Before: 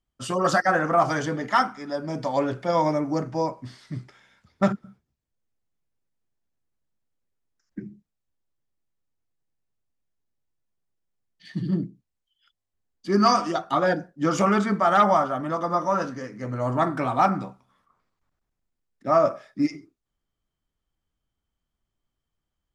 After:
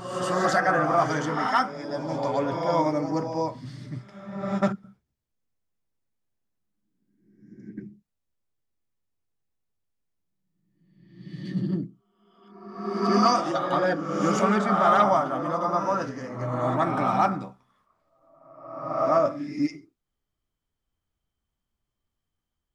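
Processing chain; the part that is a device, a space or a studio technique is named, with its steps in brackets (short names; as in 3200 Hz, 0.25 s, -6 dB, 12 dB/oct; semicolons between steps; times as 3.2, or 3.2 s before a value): reverse reverb (reverse; reverb RT60 1.2 s, pre-delay 72 ms, DRR 3 dB; reverse); gain -2.5 dB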